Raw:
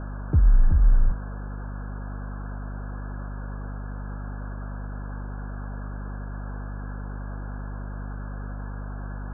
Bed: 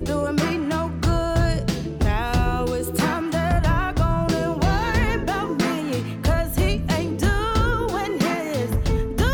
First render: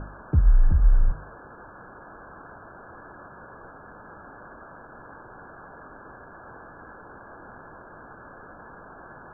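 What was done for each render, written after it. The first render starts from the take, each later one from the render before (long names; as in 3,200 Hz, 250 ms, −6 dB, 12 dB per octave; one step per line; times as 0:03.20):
hum removal 50 Hz, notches 5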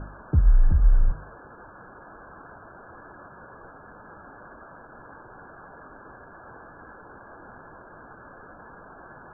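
broadband denoise 6 dB, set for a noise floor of −46 dBFS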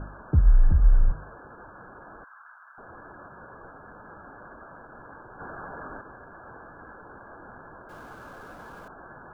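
0:02.24–0:02.78: inverse Chebyshev high-pass filter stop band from 190 Hz, stop band 80 dB
0:05.40–0:06.01: clip gain +6.5 dB
0:07.89–0:08.88: converter with a step at zero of −50 dBFS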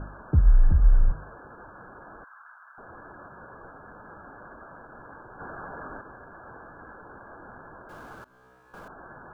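0:08.24–0:08.74: tuned comb filter 63 Hz, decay 1.1 s, mix 100%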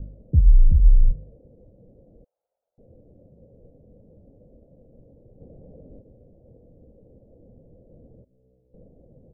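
Chebyshev low-pass filter 520 Hz, order 5
comb filter 1.4 ms, depth 58%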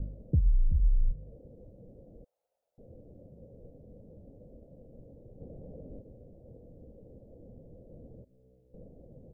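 downward compressor 3 to 1, threshold −25 dBFS, peak gain reduction 12.5 dB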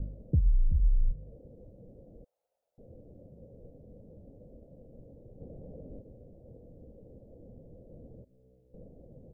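no processing that can be heard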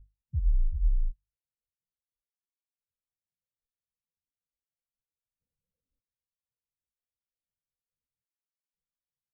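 every bin expanded away from the loudest bin 2.5 to 1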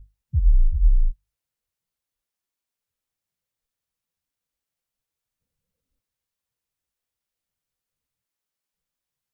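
level +8.5 dB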